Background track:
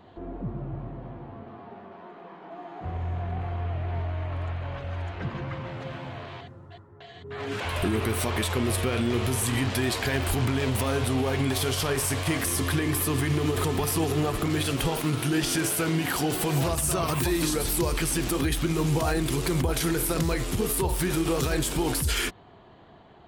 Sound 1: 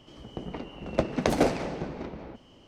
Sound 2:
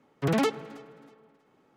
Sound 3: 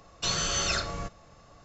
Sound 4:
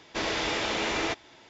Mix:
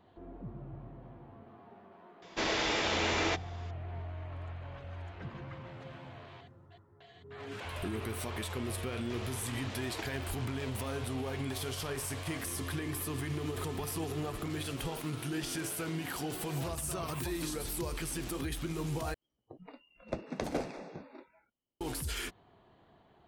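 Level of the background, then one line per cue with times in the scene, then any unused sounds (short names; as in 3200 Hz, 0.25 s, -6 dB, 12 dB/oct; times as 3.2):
background track -11 dB
2.22 add 4 -2 dB
8.95 add 4 -8 dB + level quantiser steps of 14 dB
19.14 replace with 1 -11.5 dB + spectral noise reduction 28 dB
not used: 2, 3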